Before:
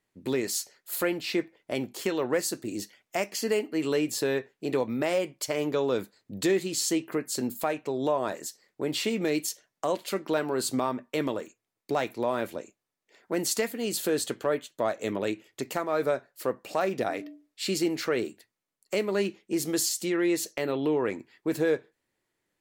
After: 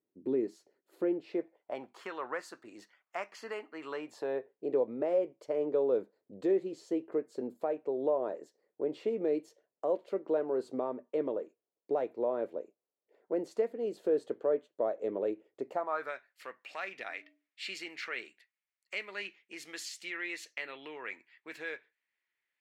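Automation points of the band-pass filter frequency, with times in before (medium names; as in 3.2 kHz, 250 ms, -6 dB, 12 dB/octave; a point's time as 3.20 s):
band-pass filter, Q 2.1
1.03 s 340 Hz
2.02 s 1.2 kHz
3.90 s 1.2 kHz
4.55 s 480 Hz
15.67 s 480 Hz
16.16 s 2.2 kHz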